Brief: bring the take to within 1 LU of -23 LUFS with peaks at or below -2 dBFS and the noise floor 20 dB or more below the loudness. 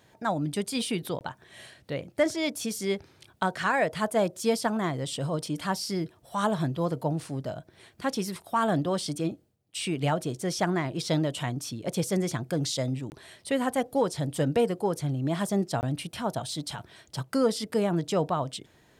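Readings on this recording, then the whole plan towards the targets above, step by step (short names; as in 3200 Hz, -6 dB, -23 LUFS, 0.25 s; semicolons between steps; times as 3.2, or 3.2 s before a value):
dropouts 3; longest dropout 19 ms; loudness -29.5 LUFS; peak -13.0 dBFS; loudness target -23.0 LUFS
-> interpolate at 1.19/13.1/15.81, 19 ms; gain +6.5 dB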